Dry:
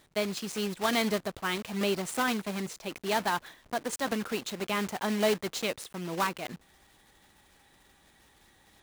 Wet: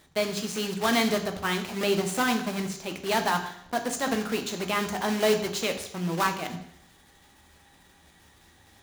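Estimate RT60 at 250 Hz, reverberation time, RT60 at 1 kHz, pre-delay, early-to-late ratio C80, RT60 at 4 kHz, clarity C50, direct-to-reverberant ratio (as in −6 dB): 0.70 s, 0.70 s, 0.70 s, 10 ms, 12.5 dB, 0.70 s, 10.0 dB, 5.5 dB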